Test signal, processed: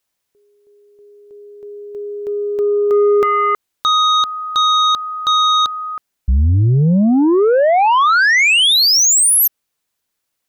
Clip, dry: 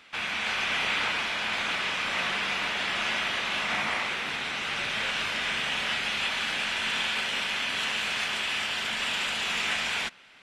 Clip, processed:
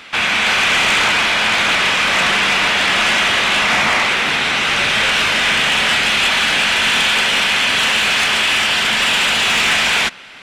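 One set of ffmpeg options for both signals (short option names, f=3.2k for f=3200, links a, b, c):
-af "acontrast=37,aeval=exprs='0.316*sin(PI/2*2.24*val(0)/0.316)':c=same"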